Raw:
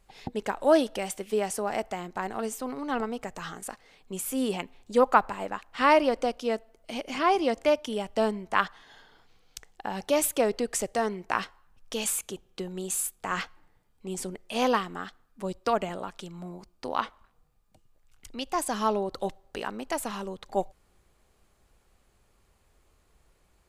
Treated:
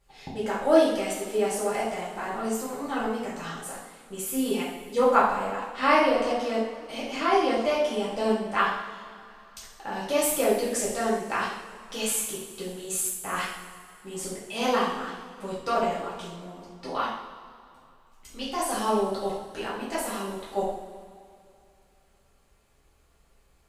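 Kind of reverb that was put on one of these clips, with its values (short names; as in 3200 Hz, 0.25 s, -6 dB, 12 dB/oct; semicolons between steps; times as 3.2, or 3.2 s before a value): two-slope reverb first 0.66 s, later 2.6 s, from -15 dB, DRR -8.5 dB; gain -7 dB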